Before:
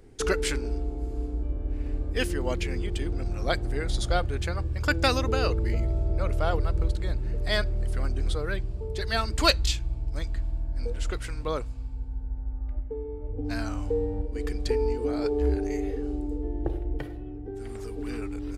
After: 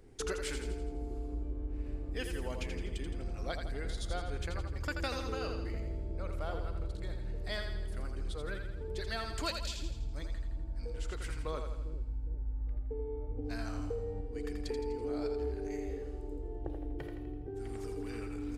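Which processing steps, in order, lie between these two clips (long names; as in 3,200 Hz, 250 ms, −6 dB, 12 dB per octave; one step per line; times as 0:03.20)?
downward compressor 3 to 1, threshold −30 dBFS, peak gain reduction 11.5 dB
echo with a time of its own for lows and highs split 390 Hz, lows 404 ms, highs 83 ms, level −6 dB
level −5.5 dB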